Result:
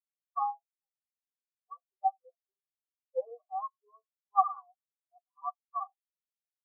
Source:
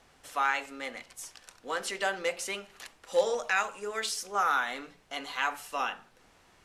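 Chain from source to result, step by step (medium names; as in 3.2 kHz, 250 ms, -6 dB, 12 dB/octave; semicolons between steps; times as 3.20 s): comb 2.7 ms, depth 57%; dynamic bell 650 Hz, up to +5 dB, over -44 dBFS, Q 3.4; low-pass 2.4 kHz; peaking EQ 1.1 kHz +13 dB 0.4 oct; static phaser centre 710 Hz, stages 4; spectral contrast expander 4:1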